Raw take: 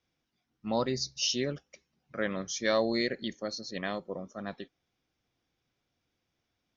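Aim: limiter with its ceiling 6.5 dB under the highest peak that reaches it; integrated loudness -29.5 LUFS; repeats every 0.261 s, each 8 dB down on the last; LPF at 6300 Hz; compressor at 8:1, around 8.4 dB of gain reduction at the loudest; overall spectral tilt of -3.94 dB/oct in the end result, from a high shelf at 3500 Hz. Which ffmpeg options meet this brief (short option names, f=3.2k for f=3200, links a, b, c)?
-af "lowpass=6.3k,highshelf=f=3.5k:g=-4,acompressor=threshold=-31dB:ratio=8,alimiter=level_in=3.5dB:limit=-24dB:level=0:latency=1,volume=-3.5dB,aecho=1:1:261|522|783|1044|1305:0.398|0.159|0.0637|0.0255|0.0102,volume=10dB"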